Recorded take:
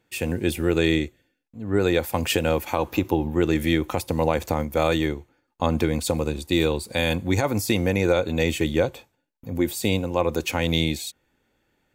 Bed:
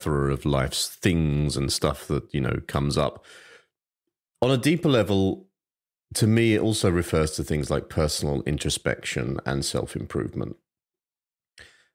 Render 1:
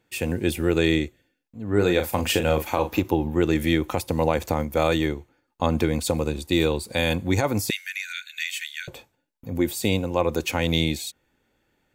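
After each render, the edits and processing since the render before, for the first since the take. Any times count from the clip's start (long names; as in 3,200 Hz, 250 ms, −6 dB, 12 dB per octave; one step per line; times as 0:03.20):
0:01.67–0:03.02: double-tracking delay 39 ms −8 dB
0:07.70–0:08.88: Butterworth high-pass 1,500 Hz 96 dB per octave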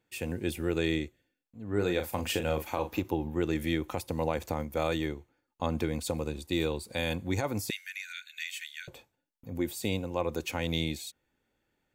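level −8.5 dB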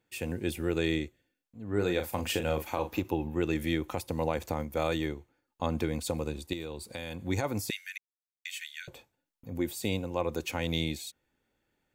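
0:03.05–0:03.52: hollow resonant body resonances 2,600 Hz, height 13 dB
0:06.53–0:07.22: downward compressor 4 to 1, threshold −35 dBFS
0:07.98–0:08.45: silence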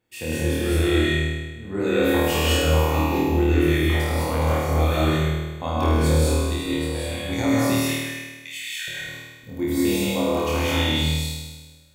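flutter between parallel walls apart 4.4 metres, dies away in 1.3 s
reverb whose tail is shaped and stops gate 230 ms rising, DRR −3.5 dB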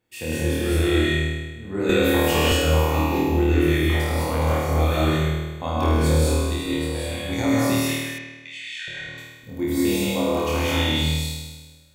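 0:01.89–0:02.52: multiband upward and downward compressor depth 100%
0:08.18–0:09.18: high-frequency loss of the air 120 metres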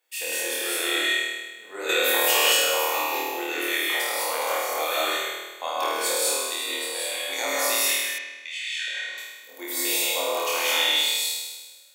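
high-pass filter 450 Hz 24 dB per octave
spectral tilt +2.5 dB per octave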